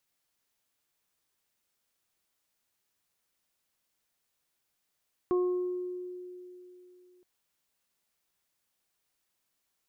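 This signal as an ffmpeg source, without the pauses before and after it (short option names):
-f lavfi -i "aevalsrc='0.0708*pow(10,-3*t/3.15)*sin(2*PI*361*t)+0.00944*pow(10,-3*t/0.77)*sin(2*PI*722*t)+0.0178*pow(10,-3*t/0.97)*sin(2*PI*1083*t)':d=1.92:s=44100"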